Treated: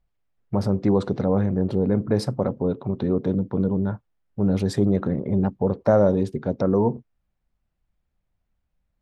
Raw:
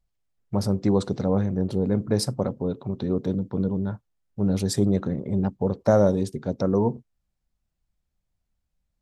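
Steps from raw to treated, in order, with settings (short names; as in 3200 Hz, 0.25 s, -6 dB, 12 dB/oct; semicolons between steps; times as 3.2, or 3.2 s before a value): tone controls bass -2 dB, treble -15 dB; in parallel at -0.5 dB: limiter -18 dBFS, peak gain reduction 10.5 dB; on the sum: gain -1 dB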